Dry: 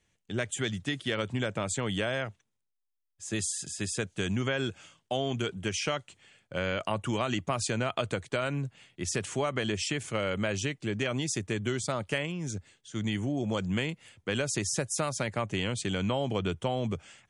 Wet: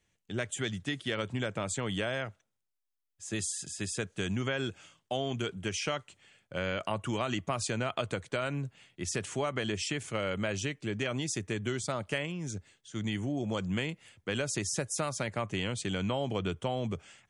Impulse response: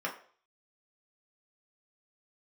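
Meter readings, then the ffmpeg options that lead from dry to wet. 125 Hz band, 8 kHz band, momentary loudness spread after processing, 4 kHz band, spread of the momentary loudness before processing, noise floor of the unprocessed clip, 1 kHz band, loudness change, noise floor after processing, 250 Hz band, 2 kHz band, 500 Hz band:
-2.5 dB, -2.5 dB, 6 LU, -2.5 dB, 6 LU, -80 dBFS, -2.0 dB, -2.5 dB, -82 dBFS, -2.5 dB, -2.0 dB, -2.5 dB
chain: -filter_complex "[0:a]asplit=2[s0][s1];[1:a]atrim=start_sample=2205,asetrate=48510,aresample=44100[s2];[s1][s2]afir=irnorm=-1:irlink=0,volume=0.0447[s3];[s0][s3]amix=inputs=2:normalize=0,volume=0.75"

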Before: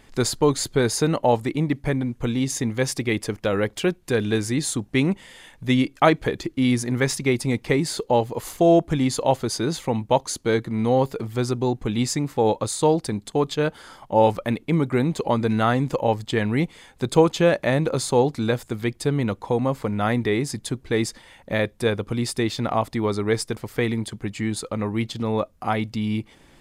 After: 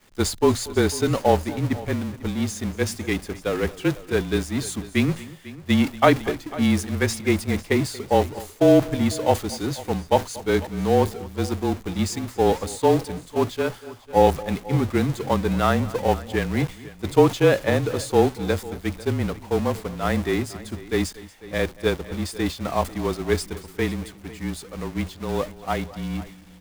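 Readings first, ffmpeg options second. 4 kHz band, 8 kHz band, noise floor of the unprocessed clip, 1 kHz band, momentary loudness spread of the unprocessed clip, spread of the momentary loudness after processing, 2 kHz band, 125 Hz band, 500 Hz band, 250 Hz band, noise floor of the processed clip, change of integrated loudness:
-1.5 dB, -3.0 dB, -54 dBFS, 0.0 dB, 7 LU, 11 LU, -0.5 dB, -1.0 dB, 0.0 dB, -0.5 dB, -45 dBFS, -0.5 dB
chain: -filter_complex "[0:a]aeval=exprs='val(0)+0.5*0.0668*sgn(val(0))':c=same,bandreject=f=50:t=h:w=6,bandreject=f=100:t=h:w=6,bandreject=f=150:t=h:w=6,bandreject=f=200:t=h:w=6,agate=range=0.0224:threshold=0.178:ratio=3:detection=peak,afreqshift=-31,asplit=2[s0][s1];[s1]aecho=0:1:234|496:0.106|0.119[s2];[s0][s2]amix=inputs=2:normalize=0"

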